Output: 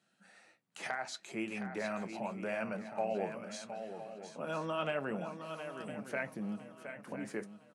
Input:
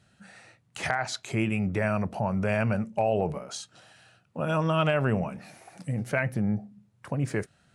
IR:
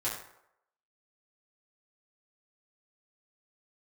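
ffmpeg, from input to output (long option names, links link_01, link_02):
-filter_complex "[0:a]asplit=2[link_01][link_02];[link_02]aecho=0:1:716:0.355[link_03];[link_01][link_03]amix=inputs=2:normalize=0,flanger=delay=5.8:depth=4.8:regen=-58:speed=0.77:shape=sinusoidal,highpass=frequency=200:width=0.5412,highpass=frequency=200:width=1.3066,asplit=2[link_04][link_05];[link_05]aecho=0:1:1010|2020|3030:0.224|0.0739|0.0244[link_06];[link_04][link_06]amix=inputs=2:normalize=0,volume=-5.5dB"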